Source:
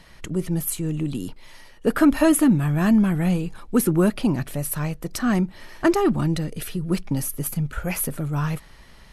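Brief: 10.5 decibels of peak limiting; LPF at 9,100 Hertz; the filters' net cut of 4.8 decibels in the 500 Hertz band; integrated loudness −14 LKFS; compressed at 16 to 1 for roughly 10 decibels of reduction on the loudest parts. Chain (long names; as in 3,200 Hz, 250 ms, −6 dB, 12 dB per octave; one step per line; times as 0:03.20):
low-pass filter 9,100 Hz
parametric band 500 Hz −7.5 dB
downward compressor 16 to 1, threshold −24 dBFS
level +21 dB
brickwall limiter −5.5 dBFS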